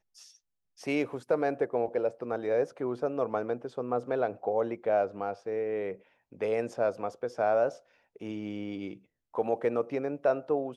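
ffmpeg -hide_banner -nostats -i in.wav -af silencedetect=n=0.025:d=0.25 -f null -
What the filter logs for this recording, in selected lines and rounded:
silence_start: 0.00
silence_end: 0.87 | silence_duration: 0.87
silence_start: 5.93
silence_end: 6.42 | silence_duration: 0.49
silence_start: 7.69
silence_end: 8.23 | silence_duration: 0.54
silence_start: 8.91
silence_end: 9.35 | silence_duration: 0.44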